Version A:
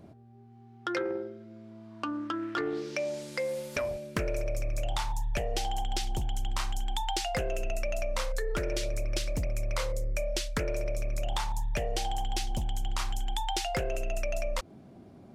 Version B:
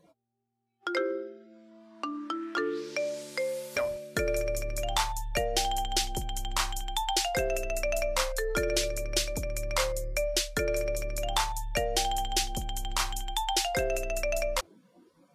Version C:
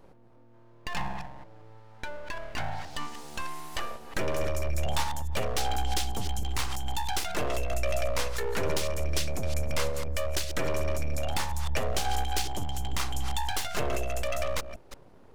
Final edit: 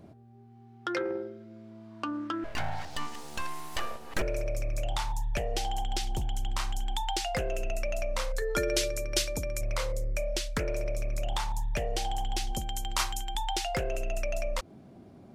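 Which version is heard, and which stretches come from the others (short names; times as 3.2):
A
2.44–4.22 from C
8.42–9.61 from B
12.53–13.35 from B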